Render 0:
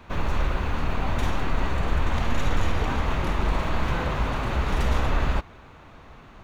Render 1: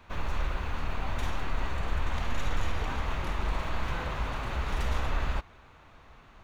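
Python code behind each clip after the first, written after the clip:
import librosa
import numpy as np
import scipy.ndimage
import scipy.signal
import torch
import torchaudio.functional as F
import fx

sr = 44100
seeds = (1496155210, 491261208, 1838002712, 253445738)

y = fx.peak_eq(x, sr, hz=230.0, db=-5.5, octaves=2.9)
y = y * librosa.db_to_amplitude(-5.0)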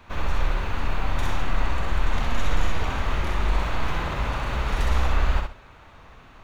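y = fx.echo_feedback(x, sr, ms=64, feedback_pct=24, wet_db=-4.0)
y = y * librosa.db_to_amplitude(4.5)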